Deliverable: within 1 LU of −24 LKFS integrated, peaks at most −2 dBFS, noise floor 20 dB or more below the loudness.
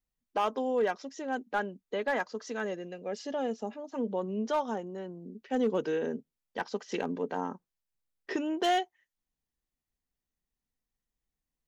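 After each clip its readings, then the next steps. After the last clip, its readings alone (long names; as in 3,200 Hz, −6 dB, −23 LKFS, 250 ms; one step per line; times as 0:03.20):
share of clipped samples 0.3%; peaks flattened at −21.0 dBFS; integrated loudness −33.5 LKFS; sample peak −21.0 dBFS; target loudness −24.0 LKFS
→ clipped peaks rebuilt −21 dBFS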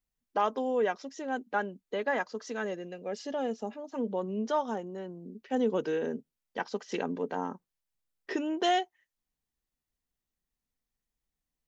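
share of clipped samples 0.0%; integrated loudness −33.0 LKFS; sample peak −16.5 dBFS; target loudness −24.0 LKFS
→ level +9 dB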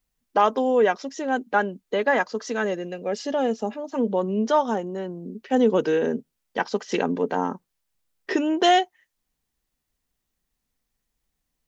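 integrated loudness −24.0 LKFS; sample peak −7.5 dBFS; background noise floor −80 dBFS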